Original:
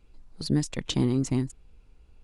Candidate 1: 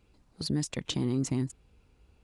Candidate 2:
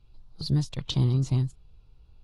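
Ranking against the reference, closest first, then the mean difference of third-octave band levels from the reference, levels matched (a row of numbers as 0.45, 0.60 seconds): 1, 2; 2.0, 4.5 decibels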